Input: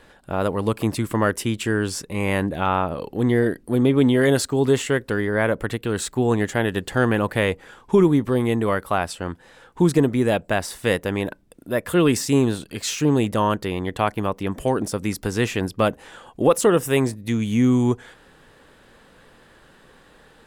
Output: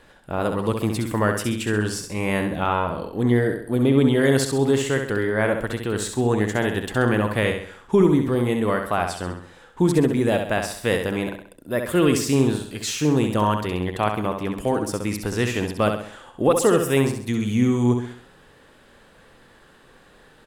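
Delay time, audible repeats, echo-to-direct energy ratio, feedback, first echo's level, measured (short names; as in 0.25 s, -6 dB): 66 ms, 4, -5.0 dB, 43%, -6.0 dB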